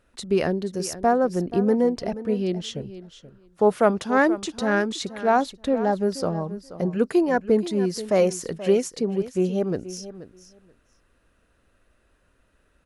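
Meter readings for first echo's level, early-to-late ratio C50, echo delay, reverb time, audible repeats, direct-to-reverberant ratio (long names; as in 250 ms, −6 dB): −14.5 dB, no reverb audible, 480 ms, no reverb audible, 2, no reverb audible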